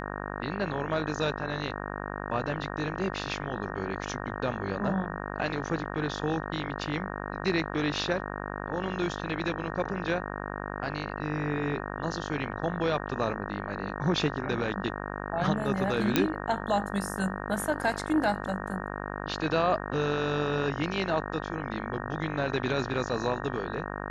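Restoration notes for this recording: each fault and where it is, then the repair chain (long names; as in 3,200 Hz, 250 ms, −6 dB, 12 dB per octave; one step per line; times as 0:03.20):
mains buzz 50 Hz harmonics 37 −36 dBFS
0:16.16: click −7 dBFS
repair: click removal
hum removal 50 Hz, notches 37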